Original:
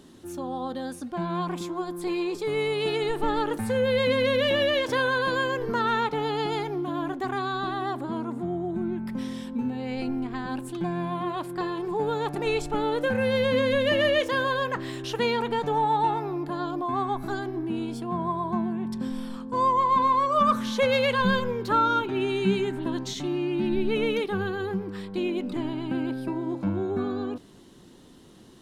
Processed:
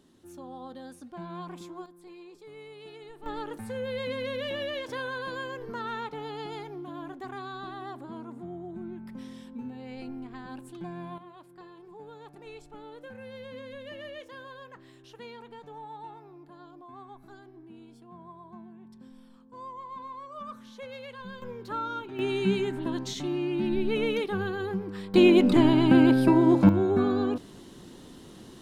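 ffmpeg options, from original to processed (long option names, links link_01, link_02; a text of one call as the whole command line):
ffmpeg -i in.wav -af "asetnsamples=nb_out_samples=441:pad=0,asendcmd='1.86 volume volume -20dB;3.26 volume volume -10dB;11.18 volume volume -19.5dB;21.42 volume volume -11dB;22.19 volume volume -2dB;25.14 volume volume 10.5dB;26.69 volume volume 4dB',volume=-10.5dB" out.wav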